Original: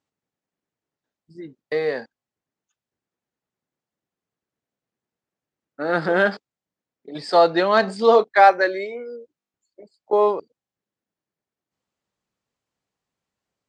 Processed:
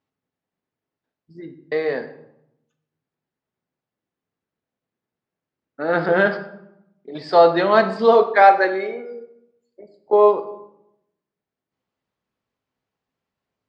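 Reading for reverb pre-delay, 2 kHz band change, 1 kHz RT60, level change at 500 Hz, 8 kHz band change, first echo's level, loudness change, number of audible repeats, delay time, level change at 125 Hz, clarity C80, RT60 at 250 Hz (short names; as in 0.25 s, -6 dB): 5 ms, +1.0 dB, 0.80 s, +2.5 dB, n/a, none, +2.0 dB, none, none, +2.5 dB, 14.0 dB, 1.1 s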